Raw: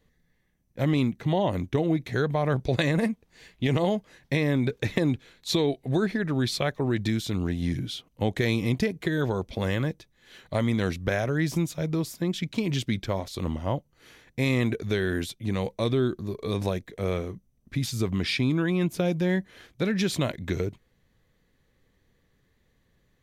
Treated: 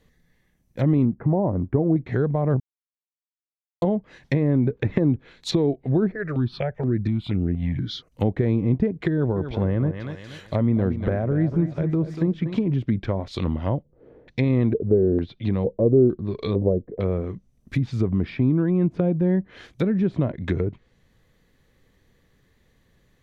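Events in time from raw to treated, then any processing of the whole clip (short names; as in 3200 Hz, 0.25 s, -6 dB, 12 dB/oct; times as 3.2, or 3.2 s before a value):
1.05–1.96 LPF 1500 Hz 24 dB/oct
2.6–3.82 mute
6.12–8.12 step phaser 4.2 Hz 900–3900 Hz
9.12–12.66 feedback echo 0.24 s, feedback 36%, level -11 dB
13.37–17.05 LFO low-pass square 1.1 Hz 500–4200 Hz
whole clip: treble ducked by the level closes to 800 Hz, closed at -23 dBFS; dynamic EQ 710 Hz, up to -4 dB, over -38 dBFS, Q 0.86; gain +5.5 dB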